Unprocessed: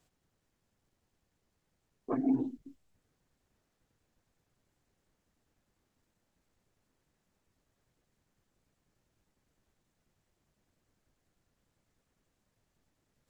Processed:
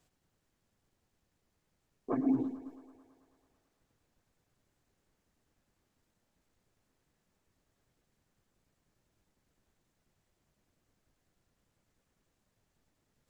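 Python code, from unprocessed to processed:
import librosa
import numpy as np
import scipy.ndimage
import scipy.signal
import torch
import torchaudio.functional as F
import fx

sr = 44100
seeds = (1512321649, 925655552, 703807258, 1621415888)

y = fx.echo_thinned(x, sr, ms=110, feedback_pct=77, hz=200.0, wet_db=-14.0)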